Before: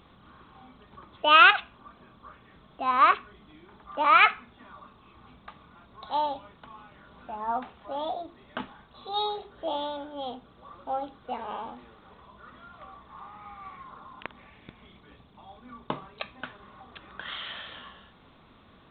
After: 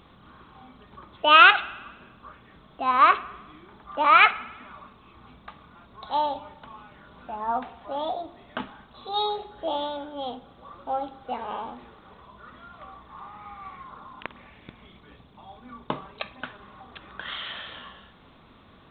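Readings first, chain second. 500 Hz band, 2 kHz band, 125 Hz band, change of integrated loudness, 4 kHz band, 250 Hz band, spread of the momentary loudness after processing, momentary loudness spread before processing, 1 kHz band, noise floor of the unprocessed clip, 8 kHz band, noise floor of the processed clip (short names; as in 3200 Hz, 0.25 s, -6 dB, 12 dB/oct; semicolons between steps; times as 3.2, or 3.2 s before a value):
+2.5 dB, +2.5 dB, +2.5 dB, +2.5 dB, +2.5 dB, +2.5 dB, 25 LU, 25 LU, +2.5 dB, -57 dBFS, n/a, -54 dBFS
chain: spring tank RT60 1.2 s, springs 50 ms, chirp 20 ms, DRR 17.5 dB; gain +2.5 dB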